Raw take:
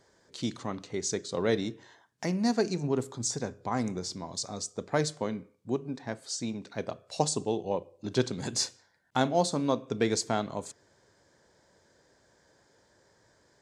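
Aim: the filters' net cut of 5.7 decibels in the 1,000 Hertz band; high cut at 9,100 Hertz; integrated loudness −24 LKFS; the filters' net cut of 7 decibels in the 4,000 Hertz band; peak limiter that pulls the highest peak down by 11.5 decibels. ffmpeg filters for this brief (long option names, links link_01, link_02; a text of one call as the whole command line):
ffmpeg -i in.wav -af "lowpass=9100,equalizer=frequency=1000:width_type=o:gain=-8,equalizer=frequency=4000:width_type=o:gain=-8.5,volume=13dB,alimiter=limit=-11.5dB:level=0:latency=1" out.wav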